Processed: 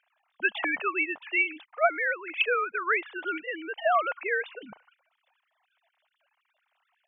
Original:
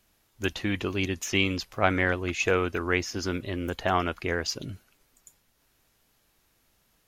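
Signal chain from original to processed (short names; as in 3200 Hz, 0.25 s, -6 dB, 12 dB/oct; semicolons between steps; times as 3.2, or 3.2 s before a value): sine-wave speech; resonant low shelf 480 Hz -12 dB, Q 1.5; vocal rider within 5 dB 0.5 s; gain +1.5 dB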